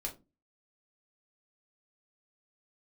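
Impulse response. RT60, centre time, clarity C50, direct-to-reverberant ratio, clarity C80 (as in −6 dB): 0.25 s, 13 ms, 14.0 dB, −0.5 dB, 21.0 dB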